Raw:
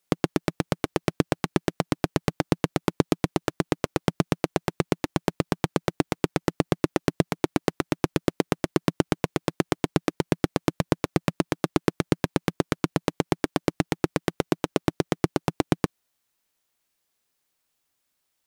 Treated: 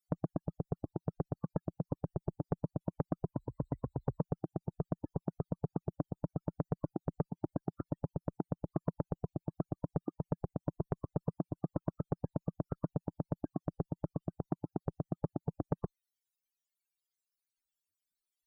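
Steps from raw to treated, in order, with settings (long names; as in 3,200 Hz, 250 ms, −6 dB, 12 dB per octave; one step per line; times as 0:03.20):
0:03.34–0:04.21: EQ curve with evenly spaced ripples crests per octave 1, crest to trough 9 dB
spectral peaks only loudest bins 32
reverb reduction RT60 1.7 s
guitar amp tone stack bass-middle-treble 6-0-2
saturating transformer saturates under 550 Hz
level +12 dB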